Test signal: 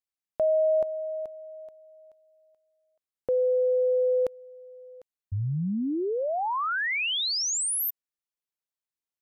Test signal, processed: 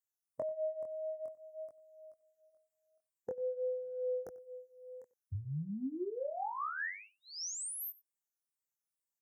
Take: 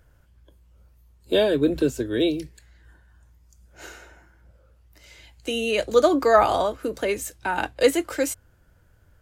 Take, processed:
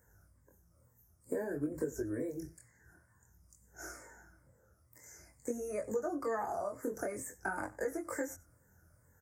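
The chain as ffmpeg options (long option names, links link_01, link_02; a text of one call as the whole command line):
ffmpeg -i in.wav -filter_complex "[0:a]afftfilt=real='re*pow(10,10/40*sin(2*PI*(1*log(max(b,1)*sr/1024/100)/log(2)-(-2.2)*(pts-256)/sr)))':imag='im*pow(10,10/40*sin(2*PI*(1*log(max(b,1)*sr/1024/100)/log(2)-(-2.2)*(pts-256)/sr)))':win_size=1024:overlap=0.75,asuperstop=centerf=3300:order=8:qfactor=0.95,bass=frequency=250:gain=4,treble=frequency=4000:gain=8,acrossover=split=2800[link_01][link_02];[link_02]acompressor=threshold=-37dB:ratio=4:attack=1:release=60[link_03];[link_01][link_03]amix=inputs=2:normalize=0,highpass=81,lowshelf=frequency=360:gain=-2.5,acompressor=threshold=-33dB:ratio=4:attack=51:release=167:knee=1:detection=peak,asplit=2[link_04][link_05];[link_05]adelay=93.29,volume=-20dB,highshelf=frequency=4000:gain=-2.1[link_06];[link_04][link_06]amix=inputs=2:normalize=0,flanger=delay=19:depth=6.4:speed=0.51,volume=-3.5dB" out.wav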